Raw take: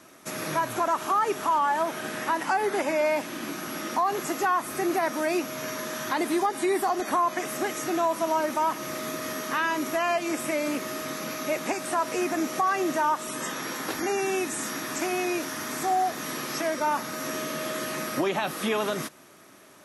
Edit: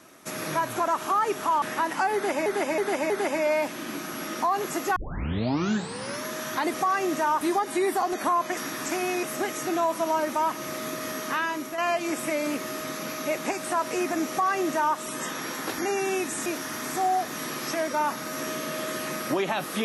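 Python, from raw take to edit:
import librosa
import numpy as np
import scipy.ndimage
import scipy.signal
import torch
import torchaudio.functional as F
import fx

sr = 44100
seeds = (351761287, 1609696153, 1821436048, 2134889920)

y = fx.edit(x, sr, fx.cut(start_s=1.62, length_s=0.5),
    fx.repeat(start_s=2.64, length_s=0.32, count=4),
    fx.tape_start(start_s=4.5, length_s=1.28),
    fx.fade_out_to(start_s=9.52, length_s=0.47, floor_db=-7.5),
    fx.duplicate(start_s=12.51, length_s=0.67, to_s=6.28),
    fx.move(start_s=14.67, length_s=0.66, to_s=7.44), tone=tone)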